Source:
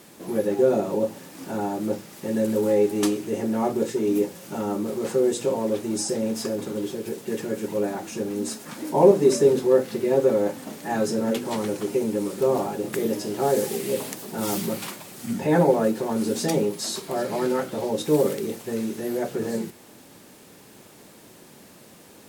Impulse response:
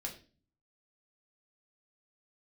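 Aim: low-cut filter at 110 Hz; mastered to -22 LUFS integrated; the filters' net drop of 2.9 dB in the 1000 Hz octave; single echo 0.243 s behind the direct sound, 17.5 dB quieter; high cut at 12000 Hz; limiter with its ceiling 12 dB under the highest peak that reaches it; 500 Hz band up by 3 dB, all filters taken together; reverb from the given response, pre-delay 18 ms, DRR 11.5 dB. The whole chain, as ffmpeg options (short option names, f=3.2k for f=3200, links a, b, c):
-filter_complex "[0:a]highpass=110,lowpass=12k,equalizer=f=500:t=o:g=5,equalizer=f=1k:t=o:g=-6.5,alimiter=limit=-13dB:level=0:latency=1,aecho=1:1:243:0.133,asplit=2[a][b];[1:a]atrim=start_sample=2205,adelay=18[c];[b][c]afir=irnorm=-1:irlink=0,volume=-10.5dB[d];[a][d]amix=inputs=2:normalize=0,volume=2.5dB"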